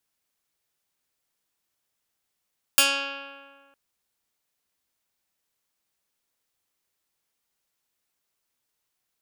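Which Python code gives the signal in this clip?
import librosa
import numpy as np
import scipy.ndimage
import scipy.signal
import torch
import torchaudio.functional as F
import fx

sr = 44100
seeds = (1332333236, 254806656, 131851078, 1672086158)

y = fx.pluck(sr, length_s=0.96, note=61, decay_s=1.75, pick=0.14, brightness='medium')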